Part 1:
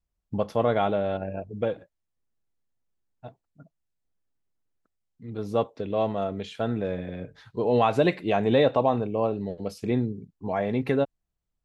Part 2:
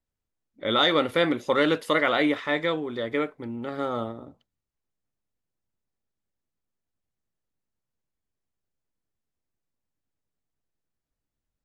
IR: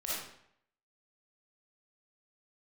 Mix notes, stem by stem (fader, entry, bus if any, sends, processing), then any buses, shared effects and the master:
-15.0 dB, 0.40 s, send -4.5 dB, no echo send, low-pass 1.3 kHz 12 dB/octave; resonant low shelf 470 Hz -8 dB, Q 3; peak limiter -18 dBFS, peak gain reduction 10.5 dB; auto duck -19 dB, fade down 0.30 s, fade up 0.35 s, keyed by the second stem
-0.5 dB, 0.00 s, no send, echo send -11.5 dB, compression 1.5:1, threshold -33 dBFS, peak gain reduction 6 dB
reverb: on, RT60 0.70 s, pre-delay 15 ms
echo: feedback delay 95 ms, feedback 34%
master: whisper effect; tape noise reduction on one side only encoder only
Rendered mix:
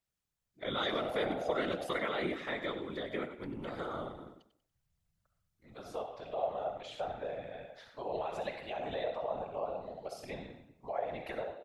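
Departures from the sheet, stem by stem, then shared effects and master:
stem 1: missing low-pass 1.3 kHz 12 dB/octave; stem 2 -0.5 dB -> -7.5 dB

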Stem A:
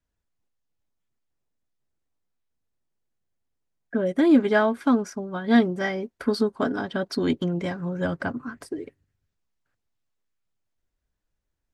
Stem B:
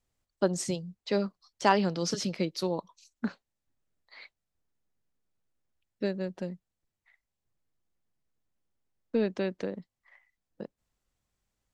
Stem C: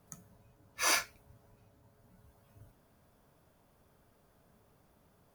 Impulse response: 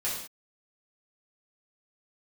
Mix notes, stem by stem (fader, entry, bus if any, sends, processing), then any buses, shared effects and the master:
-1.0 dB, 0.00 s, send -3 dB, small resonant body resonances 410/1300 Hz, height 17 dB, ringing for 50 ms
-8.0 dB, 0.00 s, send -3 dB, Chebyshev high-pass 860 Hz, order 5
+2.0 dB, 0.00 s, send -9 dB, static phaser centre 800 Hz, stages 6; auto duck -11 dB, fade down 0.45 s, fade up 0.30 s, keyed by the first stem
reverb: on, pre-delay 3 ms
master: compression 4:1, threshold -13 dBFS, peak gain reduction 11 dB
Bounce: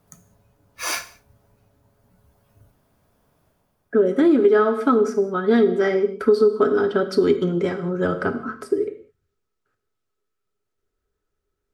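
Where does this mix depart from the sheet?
stem B: muted; stem C: missing static phaser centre 800 Hz, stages 6; reverb return -8.5 dB

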